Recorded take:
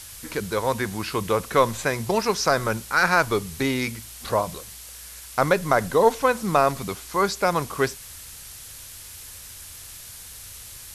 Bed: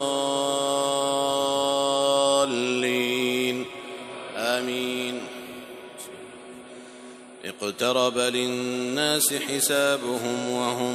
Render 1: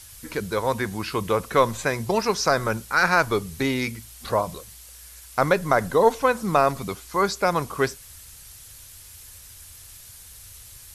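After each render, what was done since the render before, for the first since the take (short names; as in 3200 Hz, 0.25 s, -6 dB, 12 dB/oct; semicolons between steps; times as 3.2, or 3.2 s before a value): denoiser 6 dB, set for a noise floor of -42 dBFS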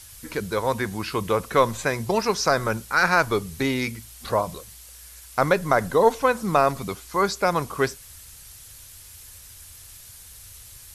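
nothing audible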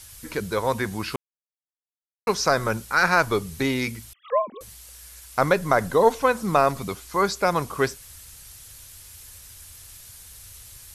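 1.16–2.27 mute; 4.13–4.61 sine-wave speech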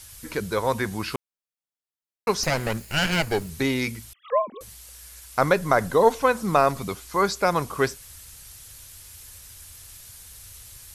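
2.43–3.5 minimum comb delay 0.43 ms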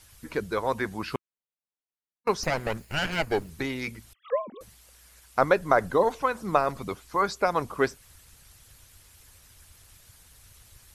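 high shelf 3300 Hz -9 dB; harmonic-percussive split harmonic -9 dB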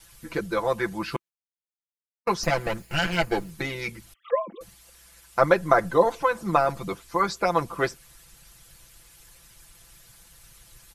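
gate with hold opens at -52 dBFS; comb 5.9 ms, depth 85%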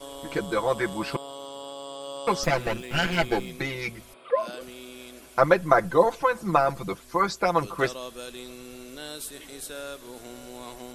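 add bed -15.5 dB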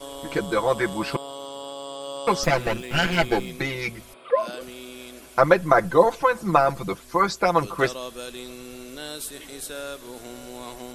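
gain +3 dB; limiter -2 dBFS, peak gain reduction 2.5 dB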